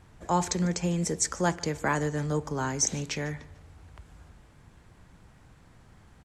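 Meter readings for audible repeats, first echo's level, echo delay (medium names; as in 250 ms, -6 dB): 2, -22.0 dB, 148 ms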